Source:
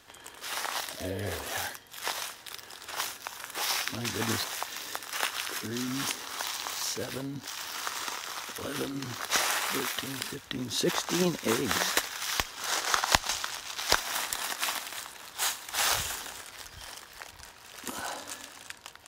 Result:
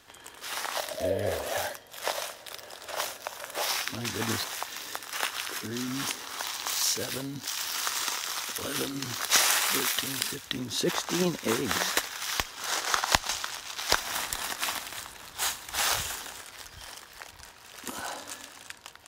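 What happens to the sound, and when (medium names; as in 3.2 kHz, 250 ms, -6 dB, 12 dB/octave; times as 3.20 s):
0.77–3.70 s: peaking EQ 590 Hz +13.5 dB 0.5 oct
6.66–10.59 s: treble shelf 2.4 kHz +7.5 dB
14.01–15.81 s: bass shelf 150 Hz +11.5 dB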